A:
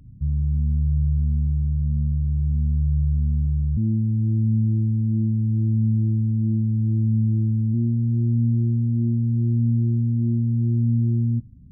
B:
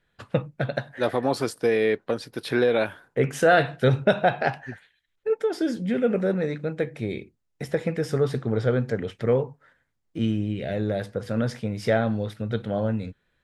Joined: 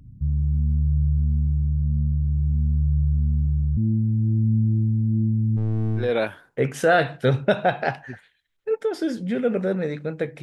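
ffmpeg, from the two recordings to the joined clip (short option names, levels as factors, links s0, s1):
-filter_complex "[0:a]asplit=3[s0][s1][s2];[s0]afade=t=out:st=5.56:d=0.02[s3];[s1]aeval=exprs='clip(val(0),-1,0.0596)':c=same,afade=t=in:st=5.56:d=0.02,afade=t=out:st=6.12:d=0.02[s4];[s2]afade=t=in:st=6.12:d=0.02[s5];[s3][s4][s5]amix=inputs=3:normalize=0,apad=whole_dur=10.42,atrim=end=10.42,atrim=end=6.12,asetpts=PTS-STARTPTS[s6];[1:a]atrim=start=2.55:end=7.01,asetpts=PTS-STARTPTS[s7];[s6][s7]acrossfade=d=0.16:c1=tri:c2=tri"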